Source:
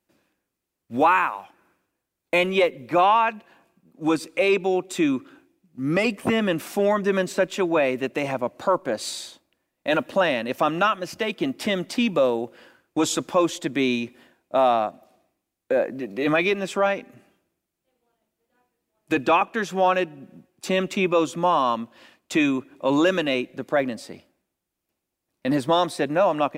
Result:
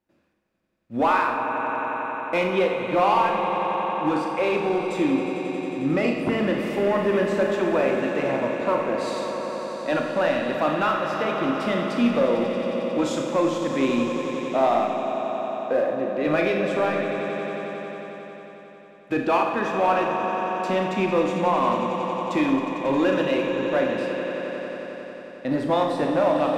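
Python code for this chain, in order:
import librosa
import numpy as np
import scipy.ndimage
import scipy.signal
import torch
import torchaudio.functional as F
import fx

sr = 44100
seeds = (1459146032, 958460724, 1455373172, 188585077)

p1 = fx.lowpass(x, sr, hz=2000.0, slope=6)
p2 = fx.echo_swell(p1, sr, ms=90, loudest=5, wet_db=-12.5)
p3 = 10.0 ** (-18.5 / 20.0) * (np.abs((p2 / 10.0 ** (-18.5 / 20.0) + 3.0) % 4.0 - 2.0) - 1.0)
p4 = p2 + (p3 * 10.0 ** (-11.0 / 20.0))
p5 = fx.rev_schroeder(p4, sr, rt60_s=0.86, comb_ms=26, drr_db=3.0)
y = p5 * 10.0 ** (-3.5 / 20.0)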